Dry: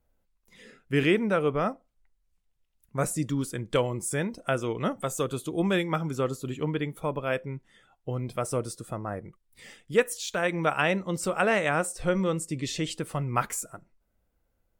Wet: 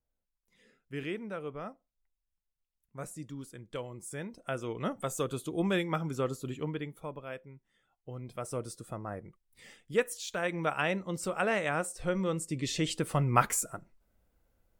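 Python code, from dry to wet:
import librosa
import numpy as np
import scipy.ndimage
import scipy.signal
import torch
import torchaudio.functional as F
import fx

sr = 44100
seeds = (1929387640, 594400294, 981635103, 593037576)

y = fx.gain(x, sr, db=fx.line((3.83, -14.0), (5.03, -4.0), (6.47, -4.0), (7.56, -16.0), (8.76, -5.5), (12.15, -5.5), (13.17, 2.0)))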